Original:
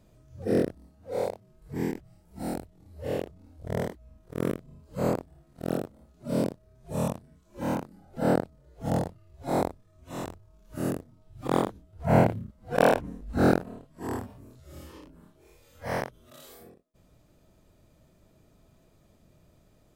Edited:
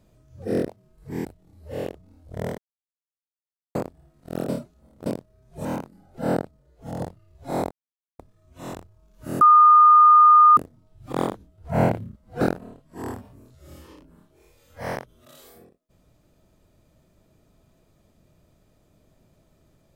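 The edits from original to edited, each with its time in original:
0:00.68–0:01.32: remove
0:01.89–0:02.58: remove
0:03.91–0:05.08: silence
0:05.82–0:06.39: reverse
0:06.98–0:07.64: remove
0:08.33–0:08.99: fade out, to −7 dB
0:09.70: splice in silence 0.48 s
0:10.92: insert tone 1,220 Hz −9 dBFS 1.16 s
0:12.76–0:13.46: remove

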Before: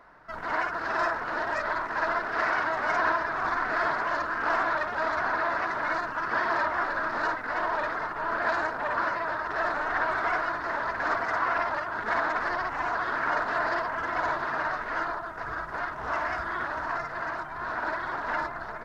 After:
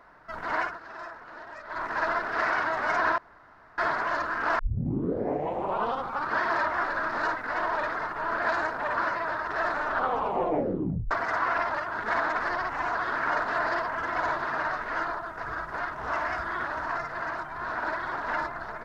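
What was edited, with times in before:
0:00.63–0:01.84: duck −13.5 dB, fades 0.16 s
0:03.18–0:03.78: fill with room tone
0:04.59: tape start 1.81 s
0:09.81: tape stop 1.30 s

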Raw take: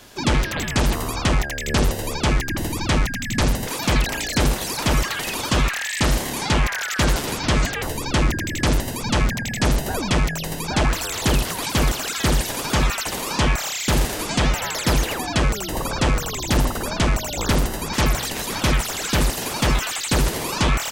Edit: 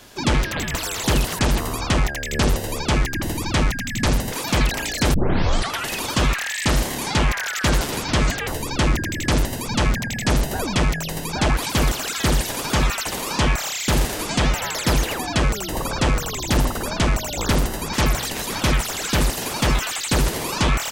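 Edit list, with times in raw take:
0:04.49: tape start 0.77 s
0:10.92–0:11.57: move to 0:00.74

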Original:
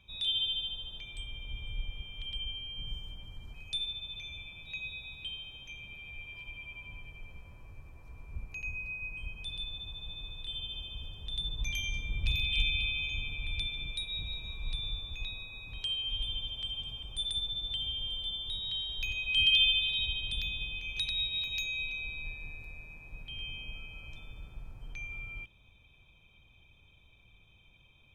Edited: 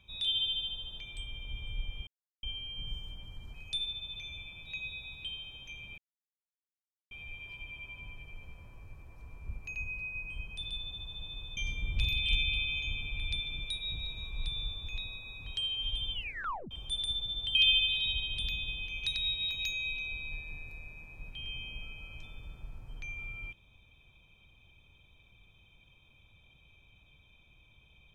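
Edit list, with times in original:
0:02.07–0:02.43: silence
0:05.98: splice in silence 1.13 s
0:10.44–0:11.84: remove
0:16.40: tape stop 0.58 s
0:17.82–0:19.48: remove

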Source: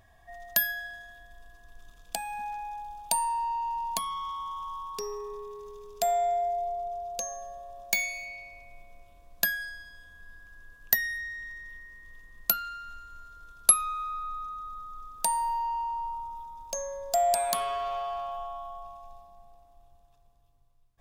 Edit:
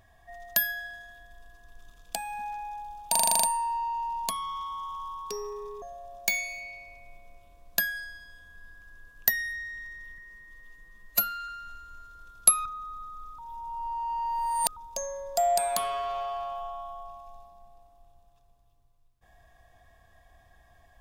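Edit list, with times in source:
0:03.11: stutter 0.04 s, 9 plays
0:05.50–0:07.47: remove
0:11.83–0:12.70: time-stretch 1.5×
0:13.87–0:14.42: remove
0:15.15–0:16.53: reverse

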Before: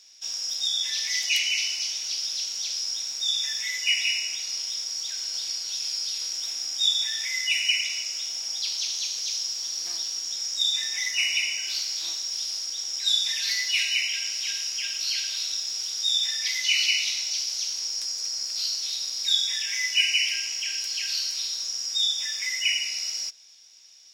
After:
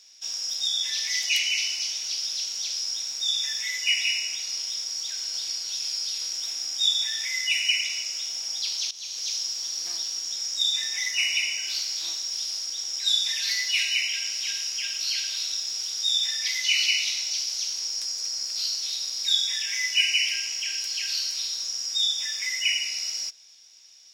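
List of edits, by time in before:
0:08.91–0:09.27: fade in, from −16.5 dB

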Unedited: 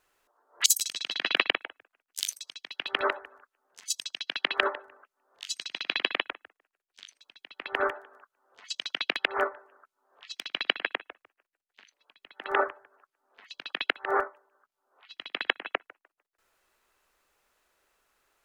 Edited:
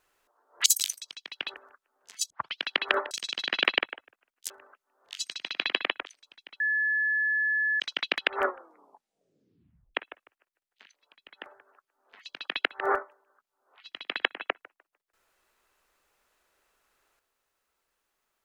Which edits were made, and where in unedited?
0:00.83–0:02.22: move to 0:04.80
0:02.93–0:03.23: remove
0:03.99: tape start 0.28 s
0:06.36–0:07.04: remove
0:07.58–0:08.78: beep over 1,720 Hz −23.5 dBFS
0:09.40: tape stop 1.53 s
0:12.44–0:12.71: remove

